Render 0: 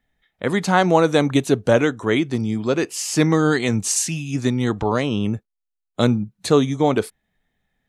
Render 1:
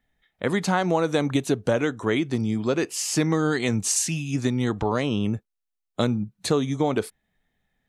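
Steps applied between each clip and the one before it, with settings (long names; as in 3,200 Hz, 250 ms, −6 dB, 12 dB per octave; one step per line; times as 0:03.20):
downward compressor 4 to 1, threshold −17 dBFS, peak gain reduction 6.5 dB
level −1.5 dB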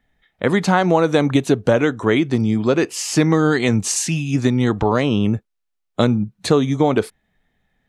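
high-shelf EQ 5,800 Hz −8 dB
level +7 dB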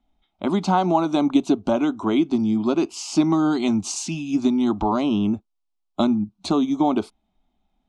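high-frequency loss of the air 91 metres
phaser with its sweep stopped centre 480 Hz, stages 6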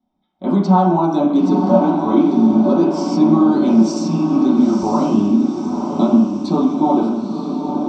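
feedback delay with all-pass diffusion 960 ms, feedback 54%, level −5.5 dB
convolution reverb RT60 0.70 s, pre-delay 3 ms, DRR −8.5 dB
level −12.5 dB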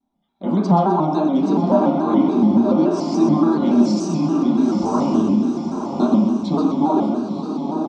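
repeating echo 127 ms, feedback 43%, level −7 dB
pitch modulation by a square or saw wave square 3.5 Hz, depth 100 cents
level −3 dB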